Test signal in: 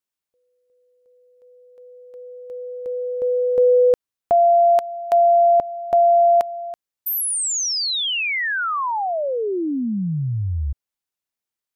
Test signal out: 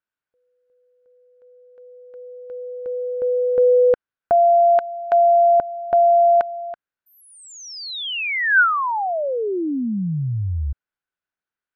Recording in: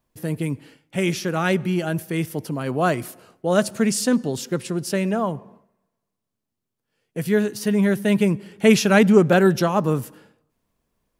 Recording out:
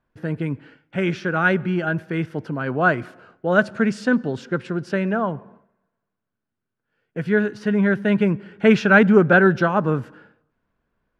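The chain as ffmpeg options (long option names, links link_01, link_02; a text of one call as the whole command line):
ffmpeg -i in.wav -af "lowpass=2700,equalizer=frequency=1500:width_type=o:width=0.31:gain=11.5" out.wav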